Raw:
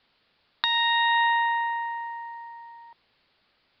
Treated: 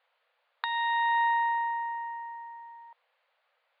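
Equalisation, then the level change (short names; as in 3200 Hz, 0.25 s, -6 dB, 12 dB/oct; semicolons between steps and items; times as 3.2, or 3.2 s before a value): dynamic EQ 2700 Hz, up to -5 dB, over -41 dBFS, Q 1.7; brick-wall FIR high-pass 460 Hz; air absorption 450 m; 0.0 dB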